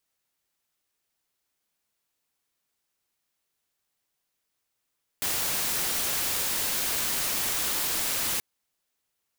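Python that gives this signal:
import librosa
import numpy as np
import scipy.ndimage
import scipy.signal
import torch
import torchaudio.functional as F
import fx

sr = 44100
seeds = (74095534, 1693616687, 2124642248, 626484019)

y = fx.noise_colour(sr, seeds[0], length_s=3.18, colour='white', level_db=-28.0)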